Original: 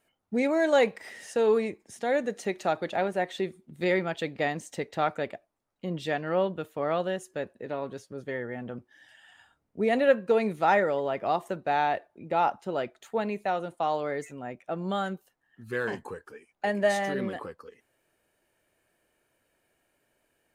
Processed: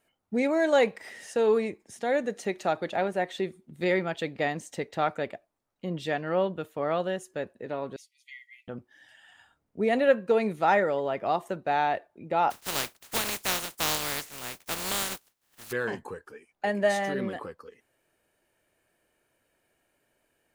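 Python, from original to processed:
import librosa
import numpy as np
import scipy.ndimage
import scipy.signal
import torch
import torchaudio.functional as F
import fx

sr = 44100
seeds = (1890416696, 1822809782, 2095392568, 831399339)

y = fx.brickwall_highpass(x, sr, low_hz=1900.0, at=(7.96, 8.68))
y = fx.spec_flatten(y, sr, power=0.19, at=(12.5, 15.71), fade=0.02)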